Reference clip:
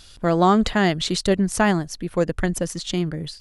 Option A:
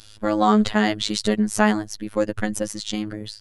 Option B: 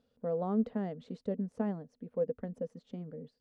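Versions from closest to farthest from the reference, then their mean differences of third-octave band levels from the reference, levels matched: A, B; 3.0, 9.5 decibels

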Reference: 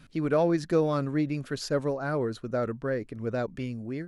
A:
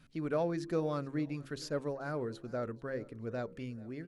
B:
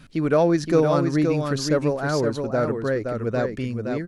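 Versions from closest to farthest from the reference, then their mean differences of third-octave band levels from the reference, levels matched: A, B; 1.5, 4.0 decibels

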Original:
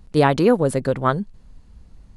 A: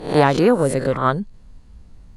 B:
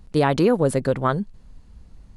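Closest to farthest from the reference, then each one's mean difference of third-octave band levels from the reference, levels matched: B, A; 1.5, 3.0 decibels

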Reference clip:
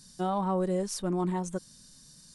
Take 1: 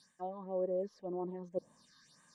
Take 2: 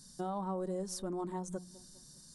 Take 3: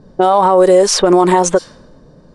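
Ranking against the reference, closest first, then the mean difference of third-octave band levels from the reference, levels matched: 2, 3, 1; 4.0, 5.5, 7.5 decibels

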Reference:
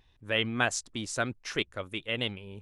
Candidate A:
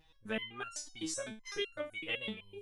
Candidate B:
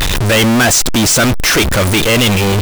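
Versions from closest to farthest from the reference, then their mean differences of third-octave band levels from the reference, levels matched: A, B; 8.0, 14.5 decibels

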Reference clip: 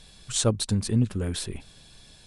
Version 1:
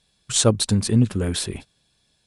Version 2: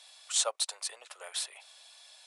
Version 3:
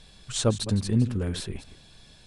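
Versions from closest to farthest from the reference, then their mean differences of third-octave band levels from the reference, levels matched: 3, 1, 2; 2.5, 5.5, 12.5 decibels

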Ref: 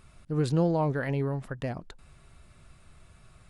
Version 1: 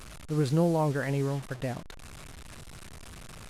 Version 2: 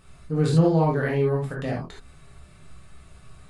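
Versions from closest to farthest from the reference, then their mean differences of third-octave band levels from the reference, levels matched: 2, 1; 3.0, 8.5 decibels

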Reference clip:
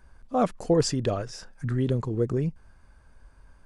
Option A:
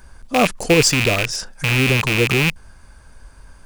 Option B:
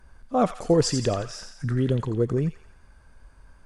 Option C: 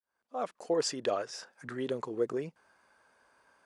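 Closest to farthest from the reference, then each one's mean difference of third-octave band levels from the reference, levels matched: B, C, A; 2.0, 6.0, 12.0 decibels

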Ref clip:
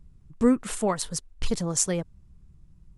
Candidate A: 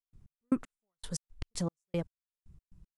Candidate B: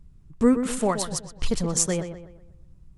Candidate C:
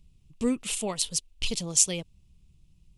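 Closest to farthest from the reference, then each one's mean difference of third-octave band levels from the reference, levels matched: B, C, A; 3.5, 5.0, 14.0 decibels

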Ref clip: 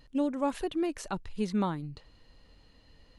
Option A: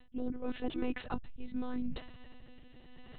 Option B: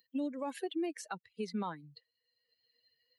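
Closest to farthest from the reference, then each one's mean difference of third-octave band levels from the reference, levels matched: B, A; 7.5, 9.5 decibels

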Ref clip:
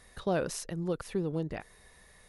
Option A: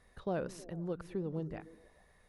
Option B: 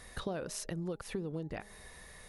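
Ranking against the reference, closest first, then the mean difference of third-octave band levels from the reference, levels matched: A, B; 4.5, 6.0 decibels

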